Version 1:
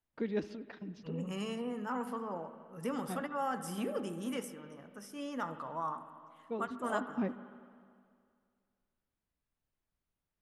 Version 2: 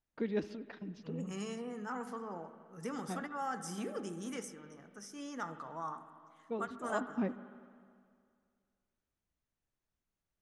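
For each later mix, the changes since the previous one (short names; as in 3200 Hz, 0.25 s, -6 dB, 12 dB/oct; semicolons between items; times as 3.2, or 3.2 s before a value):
second voice: add speaker cabinet 140–9800 Hz, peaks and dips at 250 Hz -5 dB, 560 Hz -8 dB, 1000 Hz -6 dB, 2800 Hz -7 dB, 6200 Hz +8 dB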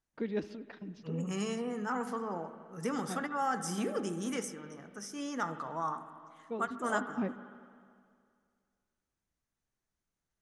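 second voice +6.0 dB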